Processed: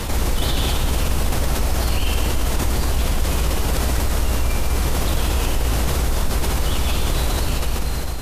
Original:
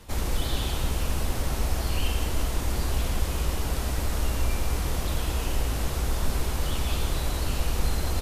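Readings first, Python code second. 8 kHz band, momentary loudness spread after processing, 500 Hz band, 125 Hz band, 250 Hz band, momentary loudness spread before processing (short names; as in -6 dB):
+7.5 dB, 1 LU, +7.5 dB, +6.5 dB, +7.5 dB, 1 LU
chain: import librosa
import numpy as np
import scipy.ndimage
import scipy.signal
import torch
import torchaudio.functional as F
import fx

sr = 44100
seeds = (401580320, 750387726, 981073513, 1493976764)

y = fx.fade_out_tail(x, sr, length_s=1.04)
y = y + 10.0 ** (-14.0 / 20.0) * np.pad(y, (int(260 * sr / 1000.0), 0))[:len(y)]
y = fx.env_flatten(y, sr, amount_pct=70)
y = y * 10.0 ** (2.5 / 20.0)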